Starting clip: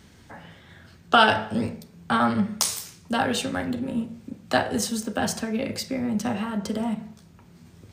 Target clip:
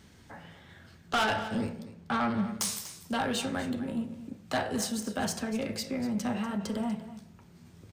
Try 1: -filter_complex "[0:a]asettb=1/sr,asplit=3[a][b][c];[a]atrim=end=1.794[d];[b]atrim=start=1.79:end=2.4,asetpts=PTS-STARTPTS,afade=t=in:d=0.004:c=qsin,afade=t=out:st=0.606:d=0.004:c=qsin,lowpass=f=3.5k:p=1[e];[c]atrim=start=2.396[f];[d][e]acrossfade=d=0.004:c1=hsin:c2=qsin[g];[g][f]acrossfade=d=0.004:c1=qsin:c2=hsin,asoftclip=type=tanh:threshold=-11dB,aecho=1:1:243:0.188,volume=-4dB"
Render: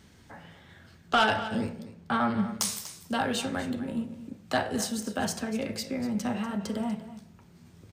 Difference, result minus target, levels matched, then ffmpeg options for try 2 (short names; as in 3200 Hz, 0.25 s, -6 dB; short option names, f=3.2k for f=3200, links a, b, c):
soft clip: distortion -7 dB
-filter_complex "[0:a]asettb=1/sr,asplit=3[a][b][c];[a]atrim=end=1.794[d];[b]atrim=start=1.79:end=2.4,asetpts=PTS-STARTPTS,afade=t=in:d=0.004:c=qsin,afade=t=out:st=0.606:d=0.004:c=qsin,lowpass=f=3.5k:p=1[e];[c]atrim=start=2.396[f];[d][e]acrossfade=d=0.004:c1=hsin:c2=qsin[g];[g][f]acrossfade=d=0.004:c1=qsin:c2=hsin,asoftclip=type=tanh:threshold=-19dB,aecho=1:1:243:0.188,volume=-4dB"